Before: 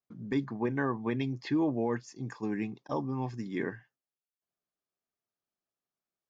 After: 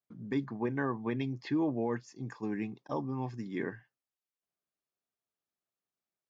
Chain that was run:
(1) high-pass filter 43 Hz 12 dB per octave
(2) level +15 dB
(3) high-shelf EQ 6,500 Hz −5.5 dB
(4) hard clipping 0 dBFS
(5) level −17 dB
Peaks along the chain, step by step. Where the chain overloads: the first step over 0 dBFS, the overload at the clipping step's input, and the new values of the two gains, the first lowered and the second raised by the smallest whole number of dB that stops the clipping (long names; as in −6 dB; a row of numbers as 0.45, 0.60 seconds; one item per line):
−19.0, −4.0, −4.0, −4.0, −21.0 dBFS
no step passes full scale